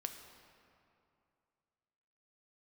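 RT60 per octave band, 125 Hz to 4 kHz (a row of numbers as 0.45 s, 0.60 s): 2.8 s, 2.6 s, 2.6 s, 2.6 s, 2.1 s, 1.6 s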